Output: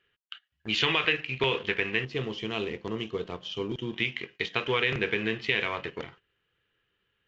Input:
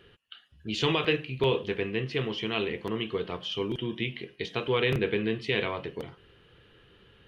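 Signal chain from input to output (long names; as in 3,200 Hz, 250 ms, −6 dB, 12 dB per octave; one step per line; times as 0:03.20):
mu-law and A-law mismatch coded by A
noise gate −53 dBFS, range −15 dB
parametric band 2,000 Hz +13.5 dB 2 octaves, from 0:02.05 −2 dB, from 0:03.94 +10 dB
downward compressor 2.5 to 1, threshold −24 dBFS, peak gain reduction 8 dB
downsampling to 16,000 Hz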